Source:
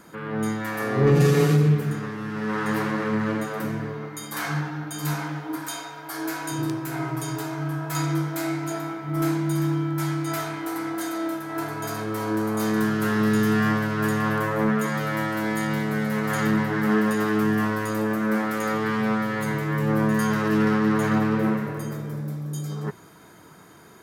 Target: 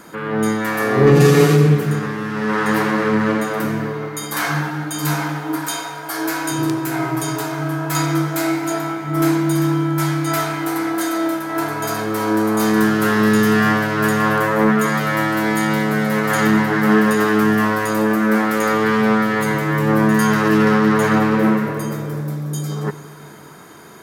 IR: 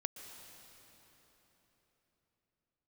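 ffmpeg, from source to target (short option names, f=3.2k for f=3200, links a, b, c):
-filter_complex "[0:a]asplit=2[a][b];[b]highpass=170[c];[1:a]atrim=start_sample=2205,asetrate=79380,aresample=44100[d];[c][d]afir=irnorm=-1:irlink=0,volume=2.5dB[e];[a][e]amix=inputs=2:normalize=0,volume=4.5dB"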